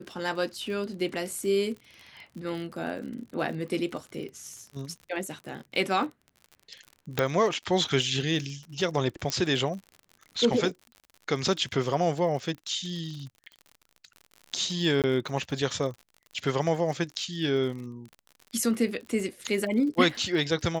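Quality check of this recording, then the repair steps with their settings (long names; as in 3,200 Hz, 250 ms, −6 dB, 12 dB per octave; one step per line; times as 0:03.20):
surface crackle 53 per second −37 dBFS
0:07.19: click −11 dBFS
0:09.30: click −12 dBFS
0:15.02–0:15.04: drop-out 18 ms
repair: click removal
repair the gap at 0:15.02, 18 ms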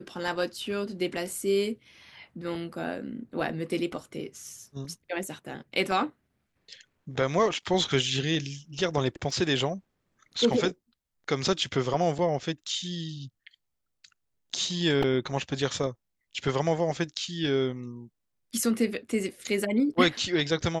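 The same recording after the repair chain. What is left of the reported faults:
0:09.30: click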